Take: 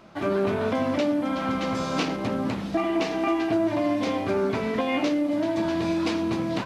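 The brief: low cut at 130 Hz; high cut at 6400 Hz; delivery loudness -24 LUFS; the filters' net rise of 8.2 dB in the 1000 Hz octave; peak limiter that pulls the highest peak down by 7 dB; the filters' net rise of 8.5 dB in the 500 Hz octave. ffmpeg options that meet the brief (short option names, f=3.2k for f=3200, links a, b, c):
-af "highpass=130,lowpass=6.4k,equalizer=f=500:t=o:g=9,equalizer=f=1k:t=o:g=7.5,volume=-2.5dB,alimiter=limit=-15.5dB:level=0:latency=1"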